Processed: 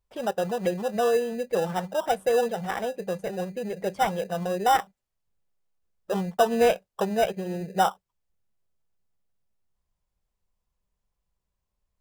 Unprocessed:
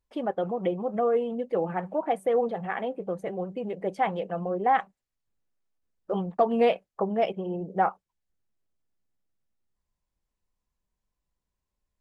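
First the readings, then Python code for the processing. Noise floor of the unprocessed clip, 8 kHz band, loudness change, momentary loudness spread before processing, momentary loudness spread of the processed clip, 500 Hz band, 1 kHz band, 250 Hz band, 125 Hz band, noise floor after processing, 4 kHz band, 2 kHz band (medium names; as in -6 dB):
-85 dBFS, no reading, +1.5 dB, 8 LU, 9 LU, +1.5 dB, +1.5 dB, 0.0 dB, +2.0 dB, -82 dBFS, +9.0 dB, +3.5 dB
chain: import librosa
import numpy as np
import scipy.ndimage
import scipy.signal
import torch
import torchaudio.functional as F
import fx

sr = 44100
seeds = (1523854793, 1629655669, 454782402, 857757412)

p1 = fx.peak_eq(x, sr, hz=290.0, db=-14.0, octaves=0.42)
p2 = fx.sample_hold(p1, sr, seeds[0], rate_hz=2200.0, jitter_pct=0)
y = p1 + F.gain(torch.from_numpy(p2), -5.5).numpy()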